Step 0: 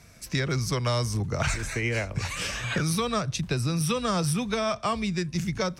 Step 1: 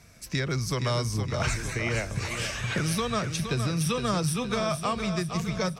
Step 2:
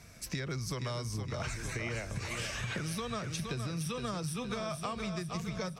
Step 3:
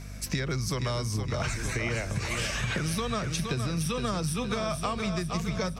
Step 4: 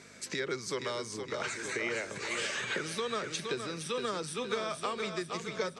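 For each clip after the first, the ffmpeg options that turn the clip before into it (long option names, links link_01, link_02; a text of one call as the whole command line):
ffmpeg -i in.wav -af "aecho=1:1:466|932|1398|1864|2330|2796:0.398|0.211|0.112|0.0593|0.0314|0.0166,volume=-1.5dB" out.wav
ffmpeg -i in.wav -af "acompressor=threshold=-34dB:ratio=6" out.wav
ffmpeg -i in.wav -af "aeval=exprs='val(0)+0.00501*(sin(2*PI*50*n/s)+sin(2*PI*2*50*n/s)/2+sin(2*PI*3*50*n/s)/3+sin(2*PI*4*50*n/s)/4+sin(2*PI*5*50*n/s)/5)':channel_layout=same,volume=6.5dB" out.wav
ffmpeg -i in.wav -af "highpass=390,equalizer=frequency=400:width_type=q:width=4:gain=6,equalizer=frequency=700:width_type=q:width=4:gain=-8,equalizer=frequency=1100:width_type=q:width=4:gain=-4,equalizer=frequency=2600:width_type=q:width=4:gain=-4,equalizer=frequency=5500:width_type=q:width=4:gain=-8,lowpass=frequency=8300:width=0.5412,lowpass=frequency=8300:width=1.3066" out.wav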